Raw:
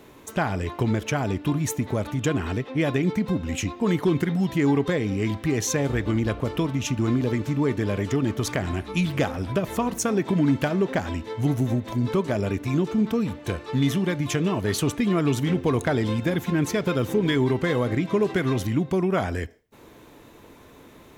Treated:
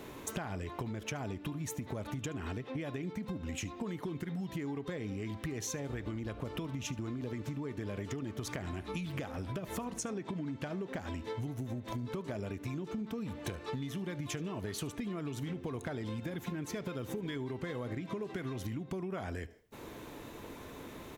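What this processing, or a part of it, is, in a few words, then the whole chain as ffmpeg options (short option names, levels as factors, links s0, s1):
serial compression, leveller first: -filter_complex "[0:a]asettb=1/sr,asplit=3[s0][s1][s2];[s0]atrim=end=9.914[s3];[s1]atrim=start=9.91:end=10.71,asetpts=PTS-STARTPTS,afade=t=in:d=0.004:c=qsin,afade=t=out:st=0.796:d=0.004:c=qsin,lowpass=9400[s4];[s2]atrim=start=10.706[s5];[s3][s4]acrossfade=d=0.004:c1=hsin:c2=qsin[s6];[s6][s5]acrossfade=d=0.004:c1=qsin:c2=hsin,acompressor=threshold=0.0501:ratio=2.5,acompressor=threshold=0.0141:ratio=10,aecho=1:1:74:0.0794,volume=1.19"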